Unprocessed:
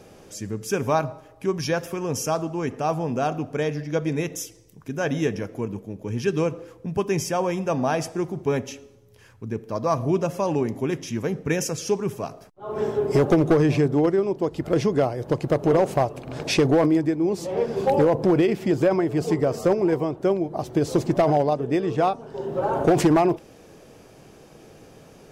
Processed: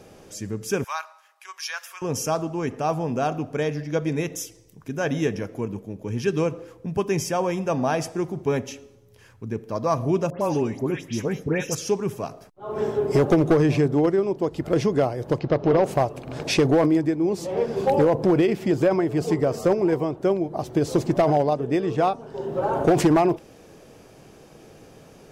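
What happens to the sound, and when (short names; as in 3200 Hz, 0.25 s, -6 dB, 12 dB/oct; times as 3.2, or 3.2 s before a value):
0.84–2.02 HPF 1100 Hz 24 dB/oct
10.3–11.75 dispersion highs, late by 0.112 s, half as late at 2200 Hz
15.39–15.84 steep low-pass 5400 Hz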